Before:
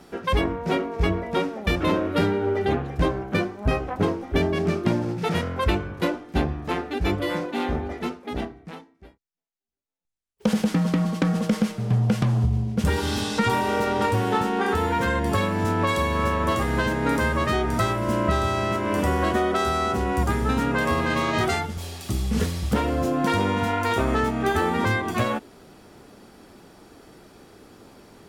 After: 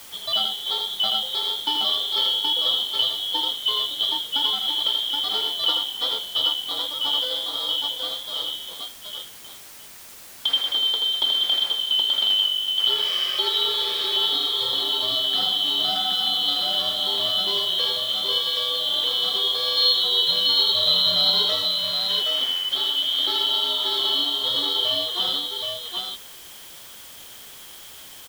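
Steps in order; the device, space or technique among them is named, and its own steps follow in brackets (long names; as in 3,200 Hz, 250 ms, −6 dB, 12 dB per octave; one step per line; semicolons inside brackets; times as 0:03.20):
0:19.77–0:21.42: flat-topped bell 1,100 Hz +11.5 dB 1 octave
multi-tap delay 81/773 ms −4.5/−3.5 dB
split-band scrambled radio (band-splitting scrambler in four parts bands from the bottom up 2413; band-pass filter 370–3,300 Hz; white noise bed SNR 19 dB)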